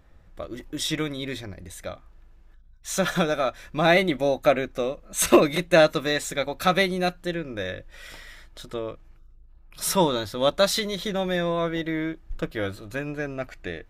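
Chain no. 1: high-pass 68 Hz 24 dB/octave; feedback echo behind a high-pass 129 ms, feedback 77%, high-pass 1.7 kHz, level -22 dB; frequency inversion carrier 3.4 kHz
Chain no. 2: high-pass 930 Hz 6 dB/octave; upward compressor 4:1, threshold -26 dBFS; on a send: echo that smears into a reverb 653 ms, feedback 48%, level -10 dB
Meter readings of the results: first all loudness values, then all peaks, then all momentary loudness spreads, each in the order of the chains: -22.0 LUFS, -28.0 LUFS; -3.0 dBFS, -7.0 dBFS; 17 LU, 13 LU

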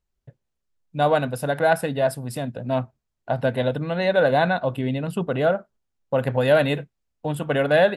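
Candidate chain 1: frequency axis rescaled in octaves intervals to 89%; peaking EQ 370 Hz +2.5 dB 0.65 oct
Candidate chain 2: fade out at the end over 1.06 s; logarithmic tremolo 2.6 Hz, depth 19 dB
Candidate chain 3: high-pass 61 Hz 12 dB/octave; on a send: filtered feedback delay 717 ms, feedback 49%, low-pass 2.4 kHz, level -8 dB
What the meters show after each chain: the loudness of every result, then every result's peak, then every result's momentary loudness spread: -24.0 LUFS, -27.5 LUFS, -22.5 LUFS; -6.0 dBFS, -6.5 dBFS, -5.5 dBFS; 11 LU, 15 LU, 9 LU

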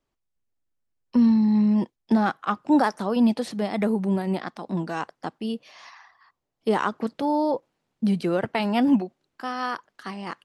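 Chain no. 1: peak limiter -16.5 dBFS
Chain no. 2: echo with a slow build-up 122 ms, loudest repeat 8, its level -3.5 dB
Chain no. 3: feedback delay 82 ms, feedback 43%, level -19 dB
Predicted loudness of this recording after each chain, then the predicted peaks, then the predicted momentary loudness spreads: -27.0 LUFS, -17.0 LUFS, -24.5 LUFS; -16.5 dBFS, -1.5 dBFS, -9.0 dBFS; 13 LU, 6 LU, 13 LU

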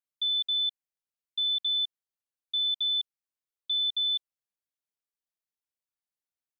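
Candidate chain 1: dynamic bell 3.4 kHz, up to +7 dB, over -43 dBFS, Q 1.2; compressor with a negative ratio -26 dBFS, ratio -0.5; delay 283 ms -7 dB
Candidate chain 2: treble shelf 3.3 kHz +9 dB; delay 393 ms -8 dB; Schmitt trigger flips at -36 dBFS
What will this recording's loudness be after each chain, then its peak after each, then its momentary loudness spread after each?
-29.0 LUFS, -27.0 LUFS; -19.0 dBFS, -22.5 dBFS; 12 LU, 5 LU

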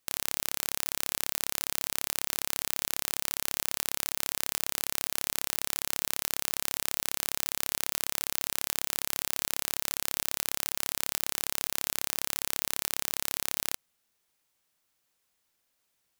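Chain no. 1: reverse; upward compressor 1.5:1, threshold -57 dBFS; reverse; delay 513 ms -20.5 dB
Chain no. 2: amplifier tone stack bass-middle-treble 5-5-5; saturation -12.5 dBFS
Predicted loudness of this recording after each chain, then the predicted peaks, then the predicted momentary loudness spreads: -30.5 LUFS, -40.0 LUFS; -2.5 dBFS, -13.5 dBFS; 0 LU, 0 LU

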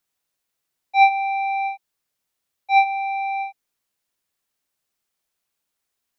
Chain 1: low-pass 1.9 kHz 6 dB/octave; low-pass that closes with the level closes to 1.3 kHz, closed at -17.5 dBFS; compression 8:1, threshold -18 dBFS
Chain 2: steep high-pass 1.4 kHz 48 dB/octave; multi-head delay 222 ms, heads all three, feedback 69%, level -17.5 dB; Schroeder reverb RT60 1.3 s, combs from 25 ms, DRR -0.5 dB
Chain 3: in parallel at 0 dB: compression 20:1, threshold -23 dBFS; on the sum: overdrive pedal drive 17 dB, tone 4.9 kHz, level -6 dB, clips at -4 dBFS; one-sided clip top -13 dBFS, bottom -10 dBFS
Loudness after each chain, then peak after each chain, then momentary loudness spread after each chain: -25.5 LUFS, -24.5 LUFS, -15.5 LUFS; -15.5 dBFS, -11.0 dBFS, -10.0 dBFS; 7 LU, 22 LU, 8 LU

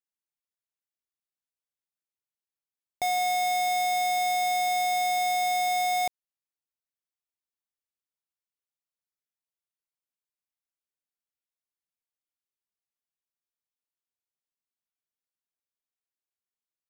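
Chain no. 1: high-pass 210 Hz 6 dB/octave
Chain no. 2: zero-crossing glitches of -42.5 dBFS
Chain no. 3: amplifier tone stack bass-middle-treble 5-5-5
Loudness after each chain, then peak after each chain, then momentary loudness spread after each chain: -26.0 LUFS, -25.5 LUFS, -37.0 LUFS; -21.5 dBFS, -24.5 dBFS, -27.5 dBFS; 3 LU, 3 LU, 3 LU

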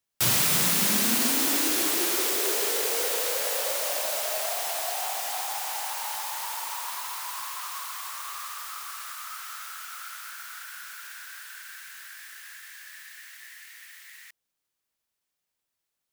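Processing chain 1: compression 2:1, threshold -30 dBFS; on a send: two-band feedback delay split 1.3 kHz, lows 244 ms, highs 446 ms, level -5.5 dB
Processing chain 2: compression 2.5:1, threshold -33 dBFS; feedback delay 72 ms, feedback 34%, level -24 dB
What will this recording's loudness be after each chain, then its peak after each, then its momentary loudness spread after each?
-29.0 LUFS, -33.0 LUFS; -14.5 dBFS, -15.5 dBFS; 16 LU, 14 LU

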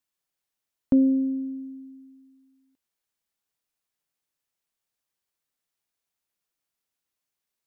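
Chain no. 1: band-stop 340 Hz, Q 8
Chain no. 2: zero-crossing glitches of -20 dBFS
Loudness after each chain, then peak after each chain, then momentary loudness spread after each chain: -24.5 LUFS, -21.0 LUFS; -11.5 dBFS, -12.0 dBFS; 20 LU, 14 LU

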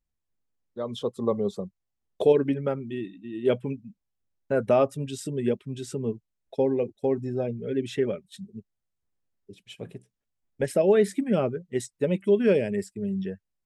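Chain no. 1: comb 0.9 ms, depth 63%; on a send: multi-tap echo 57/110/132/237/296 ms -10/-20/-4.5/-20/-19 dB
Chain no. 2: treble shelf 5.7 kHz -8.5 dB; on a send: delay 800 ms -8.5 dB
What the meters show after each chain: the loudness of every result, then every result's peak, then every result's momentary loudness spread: -26.5 LUFS, -27.0 LUFS; -8.5 dBFS, -9.0 dBFS; 16 LU, 16 LU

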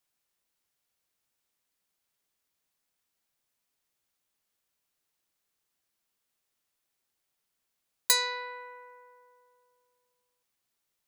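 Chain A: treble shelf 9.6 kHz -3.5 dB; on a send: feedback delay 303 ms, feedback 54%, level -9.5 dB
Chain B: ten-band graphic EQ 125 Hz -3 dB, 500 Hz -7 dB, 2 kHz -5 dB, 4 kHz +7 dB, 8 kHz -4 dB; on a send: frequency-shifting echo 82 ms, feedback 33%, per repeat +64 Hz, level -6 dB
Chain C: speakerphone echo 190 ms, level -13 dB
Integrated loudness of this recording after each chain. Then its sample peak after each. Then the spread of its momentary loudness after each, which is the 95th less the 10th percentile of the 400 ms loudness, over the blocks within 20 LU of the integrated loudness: -30.0 LUFS, -24.5 LUFS, -27.5 LUFS; -9.5 dBFS, -6.5 dBFS, -8.0 dBFS; 20 LU, 16 LU, 19 LU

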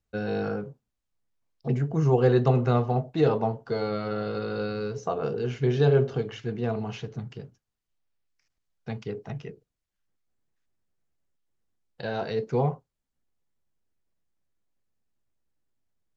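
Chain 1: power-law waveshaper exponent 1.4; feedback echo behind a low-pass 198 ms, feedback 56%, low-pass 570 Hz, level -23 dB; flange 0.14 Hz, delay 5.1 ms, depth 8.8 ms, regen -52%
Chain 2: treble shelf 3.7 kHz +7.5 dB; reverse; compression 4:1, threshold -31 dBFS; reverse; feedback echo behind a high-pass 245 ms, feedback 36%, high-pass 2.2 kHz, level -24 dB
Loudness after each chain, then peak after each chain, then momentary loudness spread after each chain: -34.5 LUFS, -35.5 LUFS; -14.5 dBFS, -20.5 dBFS; 20 LU, 9 LU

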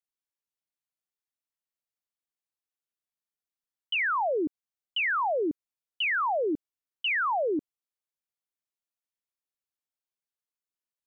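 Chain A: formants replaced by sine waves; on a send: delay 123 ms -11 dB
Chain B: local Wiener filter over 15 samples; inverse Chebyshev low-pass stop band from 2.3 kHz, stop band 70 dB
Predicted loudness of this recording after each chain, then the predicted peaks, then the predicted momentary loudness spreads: -28.5 LUFS, -34.0 LUFS; -16.0 dBFS, -24.0 dBFS; 12 LU, 12 LU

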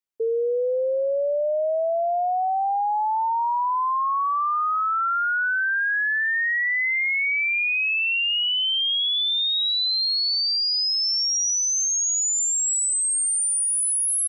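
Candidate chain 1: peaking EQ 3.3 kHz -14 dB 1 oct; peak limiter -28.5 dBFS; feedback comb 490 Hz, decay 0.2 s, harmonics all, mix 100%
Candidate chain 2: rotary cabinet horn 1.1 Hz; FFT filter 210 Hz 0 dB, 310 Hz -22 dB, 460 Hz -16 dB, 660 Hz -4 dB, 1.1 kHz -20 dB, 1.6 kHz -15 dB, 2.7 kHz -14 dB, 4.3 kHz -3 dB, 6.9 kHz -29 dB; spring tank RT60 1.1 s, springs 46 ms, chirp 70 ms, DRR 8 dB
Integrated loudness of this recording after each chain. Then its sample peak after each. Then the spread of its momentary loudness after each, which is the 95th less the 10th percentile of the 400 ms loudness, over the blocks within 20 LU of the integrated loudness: -42.5 LUFS, -33.0 LUFS; -29.0 dBFS, -23.0 dBFS; 20 LU, 21 LU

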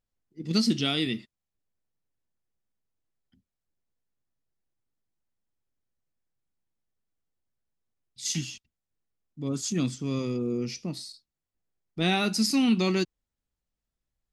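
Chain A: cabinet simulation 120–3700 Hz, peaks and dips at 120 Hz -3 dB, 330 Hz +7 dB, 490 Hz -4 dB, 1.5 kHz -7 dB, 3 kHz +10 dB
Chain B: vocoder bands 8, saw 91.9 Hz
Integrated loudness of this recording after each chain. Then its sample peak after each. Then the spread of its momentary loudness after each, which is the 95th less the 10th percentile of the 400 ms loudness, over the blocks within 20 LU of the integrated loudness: -26.5 LUFS, -29.5 LUFS; -10.5 dBFS, -12.0 dBFS; 15 LU, 15 LU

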